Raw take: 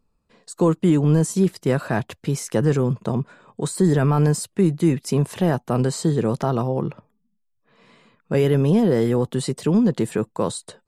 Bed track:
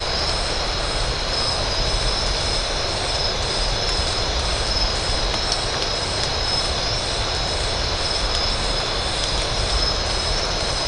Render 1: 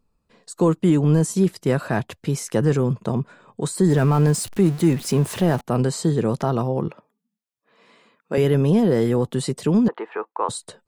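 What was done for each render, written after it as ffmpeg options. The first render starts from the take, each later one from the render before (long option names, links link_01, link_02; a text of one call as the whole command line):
ffmpeg -i in.wav -filter_complex "[0:a]asettb=1/sr,asplit=3[link_01][link_02][link_03];[link_01]atrim=end=3.904[link_04];[link_02]atrim=start=3.9:end=5.61,asetpts=PTS-STARTPTS,afade=type=in:duration=0.004:curve=qsin,afade=type=out:start_time=1.706:duration=0.004:curve=qsin,aeval=exprs='val(0)+0.5*0.0266*sgn(val(0))':channel_layout=same[link_05];[link_03]atrim=start=5.606[link_06];[link_04][link_05]acrossfade=duration=0.004:curve1=hsin:curve2=qsin[link_07];[link_07][link_06]acrossfade=duration=0.004:curve1=qsin:curve2=hsin,asettb=1/sr,asplit=3[link_08][link_09][link_10];[link_08]atrim=end=6.884[link_11];[link_09]atrim=start=6.88:end=8.38,asetpts=PTS-STARTPTS,afade=type=in:duration=0.004:curve=qsin,afade=type=out:start_time=1.496:duration=0.004:curve=qsin,highpass=270[link_12];[link_10]atrim=start=8.376[link_13];[link_11][link_12]acrossfade=duration=0.004:curve1=hsin:curve2=qsin[link_14];[link_14][link_13]acrossfade=duration=0.004:curve1=qsin:curve2=hsin,asettb=1/sr,asplit=3[link_15][link_16][link_17];[link_15]atrim=end=9.884[link_18];[link_16]atrim=start=9.88:end=10.49,asetpts=PTS-STARTPTS,afade=type=in:duration=0.004:curve=qsin,afade=type=out:start_time=0.606:duration=0.004:curve=qsin,highpass=frequency=430:width=0.5412,highpass=frequency=430:width=1.3066,equalizer=frequency=560:width_type=q:width=4:gain=-7,equalizer=frequency=870:width_type=q:width=4:gain=8,equalizer=frequency=1200:width_type=q:width=4:gain=7,lowpass=frequency=2500:width=0.5412,lowpass=frequency=2500:width=1.3066[link_19];[link_17]atrim=start=10.486[link_20];[link_18][link_19]acrossfade=duration=0.004:curve1=hsin:curve2=qsin[link_21];[link_21][link_20]acrossfade=duration=0.004:curve1=qsin:curve2=hsin" out.wav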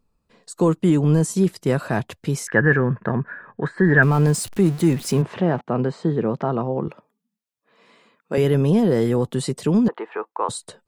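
ffmpeg -i in.wav -filter_complex "[0:a]asettb=1/sr,asplit=3[link_01][link_02][link_03];[link_01]atrim=end=2.474[link_04];[link_02]atrim=start=2.47:end=4.03,asetpts=PTS-STARTPTS,afade=type=in:duration=0.004:curve=qsin,afade=type=out:start_time=1.556:duration=0.004:curve=qsin,lowpass=frequency=1700:width_type=q:width=14[link_05];[link_03]atrim=start=4.026[link_06];[link_04][link_05]acrossfade=duration=0.004:curve1=hsin:curve2=qsin[link_07];[link_07][link_06]acrossfade=duration=0.004:curve1=qsin:curve2=hsin,asplit=3[link_08][link_09][link_10];[link_08]afade=type=out:start_time=5.21:duration=0.02[link_11];[link_09]highpass=140,lowpass=2300,afade=type=in:start_time=5.21:duration=0.02,afade=type=out:start_time=6.86:duration=0.02[link_12];[link_10]afade=type=in:start_time=6.86:duration=0.02[link_13];[link_11][link_12][link_13]amix=inputs=3:normalize=0" out.wav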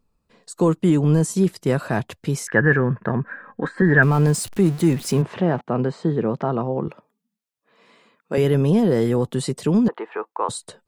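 ffmpeg -i in.wav -filter_complex "[0:a]asettb=1/sr,asplit=3[link_01][link_02][link_03];[link_01]atrim=end=3.234[link_04];[link_02]atrim=start=3.23:end=3.82,asetpts=PTS-STARTPTS,afade=type=in:duration=0.004:curve=qsin,afade=type=out:start_time=0.586:duration=0.004:curve=qsin,aecho=1:1:3.8:0.67,atrim=end_sample=26019[link_05];[link_03]atrim=start=3.816[link_06];[link_04][link_05]acrossfade=duration=0.004:curve1=hsin:curve2=qsin[link_07];[link_07][link_06]acrossfade=duration=0.004:curve1=qsin:curve2=hsin" out.wav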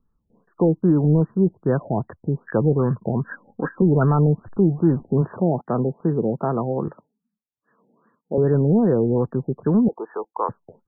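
ffmpeg -i in.wav -filter_complex "[0:a]acrossover=split=440|870[link_01][link_02][link_03];[link_02]acrusher=bits=7:mix=0:aa=0.000001[link_04];[link_01][link_04][link_03]amix=inputs=3:normalize=0,afftfilt=real='re*lt(b*sr/1024,840*pow(1900/840,0.5+0.5*sin(2*PI*2.5*pts/sr)))':imag='im*lt(b*sr/1024,840*pow(1900/840,0.5+0.5*sin(2*PI*2.5*pts/sr)))':win_size=1024:overlap=0.75" out.wav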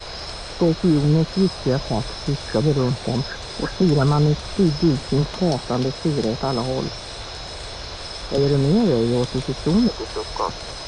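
ffmpeg -i in.wav -i bed.wav -filter_complex "[1:a]volume=-10.5dB[link_01];[0:a][link_01]amix=inputs=2:normalize=0" out.wav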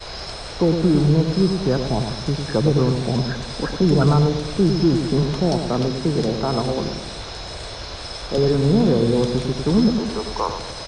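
ffmpeg -i in.wav -filter_complex "[0:a]asplit=2[link_01][link_02];[link_02]adelay=103,lowpass=frequency=840:poles=1,volume=-5.5dB,asplit=2[link_03][link_04];[link_04]adelay=103,lowpass=frequency=840:poles=1,volume=0.55,asplit=2[link_05][link_06];[link_06]adelay=103,lowpass=frequency=840:poles=1,volume=0.55,asplit=2[link_07][link_08];[link_08]adelay=103,lowpass=frequency=840:poles=1,volume=0.55,asplit=2[link_09][link_10];[link_10]adelay=103,lowpass=frequency=840:poles=1,volume=0.55,asplit=2[link_11][link_12];[link_12]adelay=103,lowpass=frequency=840:poles=1,volume=0.55,asplit=2[link_13][link_14];[link_14]adelay=103,lowpass=frequency=840:poles=1,volume=0.55[link_15];[link_01][link_03][link_05][link_07][link_09][link_11][link_13][link_15]amix=inputs=8:normalize=0" out.wav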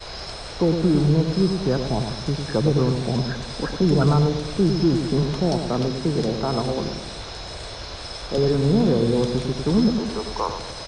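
ffmpeg -i in.wav -af "volume=-2dB" out.wav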